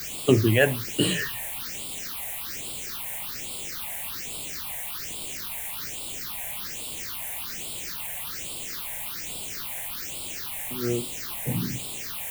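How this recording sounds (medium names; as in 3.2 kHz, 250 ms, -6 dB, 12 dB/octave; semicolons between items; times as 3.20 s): a quantiser's noise floor 6-bit, dither triangular; phasing stages 6, 1.2 Hz, lowest notch 330–1700 Hz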